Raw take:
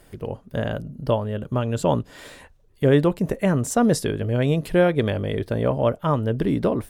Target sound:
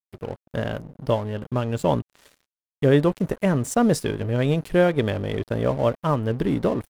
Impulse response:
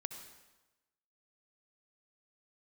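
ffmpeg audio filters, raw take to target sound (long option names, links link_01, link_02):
-af "aeval=exprs='sgn(val(0))*max(abs(val(0))-0.0119,0)':channel_layout=same"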